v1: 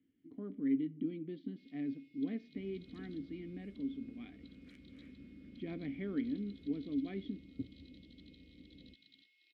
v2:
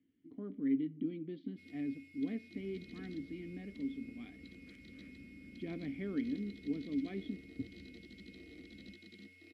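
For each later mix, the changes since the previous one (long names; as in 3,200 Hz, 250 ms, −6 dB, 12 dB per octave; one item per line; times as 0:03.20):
first sound: remove resonant band-pass 3,500 Hz, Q 3.6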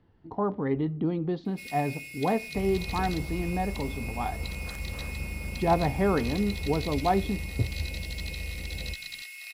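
first sound: add high-pass with resonance 2,400 Hz, resonance Q 4.3
master: remove formant filter i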